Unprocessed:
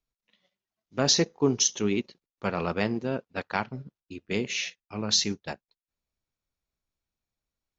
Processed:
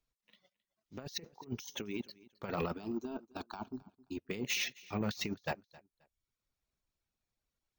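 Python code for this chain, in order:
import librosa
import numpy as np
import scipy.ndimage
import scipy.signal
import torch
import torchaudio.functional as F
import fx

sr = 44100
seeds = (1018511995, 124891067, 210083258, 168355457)

p1 = fx.dereverb_blind(x, sr, rt60_s=0.74)
p2 = fx.over_compress(p1, sr, threshold_db=-32.0, ratio=-0.5)
p3 = 10.0 ** (-22.0 / 20.0) * np.tanh(p2 / 10.0 ** (-22.0 / 20.0))
p4 = fx.fixed_phaser(p3, sr, hz=520.0, stages=6, at=(2.74, 4.17))
p5 = p4 + fx.echo_feedback(p4, sr, ms=265, feedback_pct=21, wet_db=-22.0, dry=0)
p6 = np.repeat(scipy.signal.resample_poly(p5, 1, 2), 2)[:len(p5)]
y = F.gain(torch.from_numpy(p6), -3.5).numpy()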